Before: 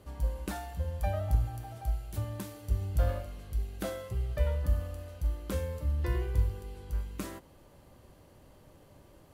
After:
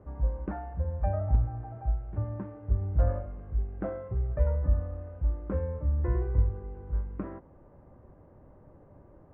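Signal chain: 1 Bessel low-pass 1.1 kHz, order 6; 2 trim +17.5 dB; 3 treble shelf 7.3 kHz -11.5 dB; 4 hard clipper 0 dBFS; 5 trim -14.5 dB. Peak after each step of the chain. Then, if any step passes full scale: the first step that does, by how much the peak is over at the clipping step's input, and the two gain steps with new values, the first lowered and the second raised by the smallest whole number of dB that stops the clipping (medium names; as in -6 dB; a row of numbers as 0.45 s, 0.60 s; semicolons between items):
-14.5 dBFS, +3.0 dBFS, +3.0 dBFS, 0.0 dBFS, -14.5 dBFS; step 2, 3.0 dB; step 2 +14.5 dB, step 5 -11.5 dB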